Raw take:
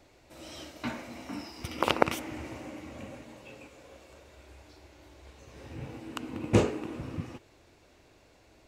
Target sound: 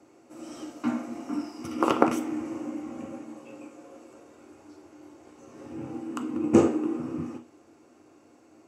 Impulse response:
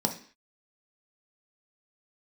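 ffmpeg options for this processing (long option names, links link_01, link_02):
-filter_complex "[0:a]equalizer=frequency=190:width_type=o:width=0.25:gain=-5.5[link_01];[1:a]atrim=start_sample=2205,asetrate=61740,aresample=44100[link_02];[link_01][link_02]afir=irnorm=-1:irlink=0,volume=-6dB"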